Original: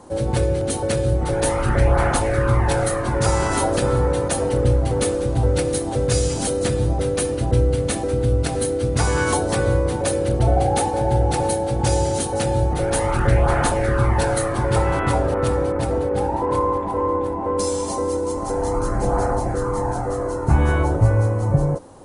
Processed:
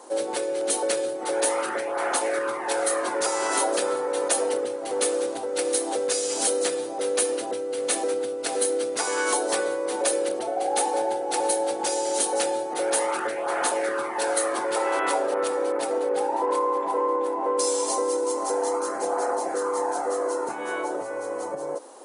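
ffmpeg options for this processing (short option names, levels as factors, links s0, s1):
-filter_complex "[0:a]asettb=1/sr,asplit=3[s0][s1][s2];[s0]atrim=end=14.754[s3];[s1]atrim=start=14.75:end=15.23,asetpts=PTS-STARTPTS,afade=t=in:d=0.004:c=qsin,afade=t=out:st=0.476:d=0.004:c=qsin,highpass=230[s4];[s2]atrim=start=15.226[s5];[s3][s4]acrossfade=d=0.004:c1=hsin:c2=qsin[s6];[s6][s5]acrossfade=d=0.004:c1=qsin:c2=hsin,acompressor=threshold=0.112:ratio=6,highpass=f=350:w=0.5412,highpass=f=350:w=1.3066,highshelf=f=4200:g=5.5"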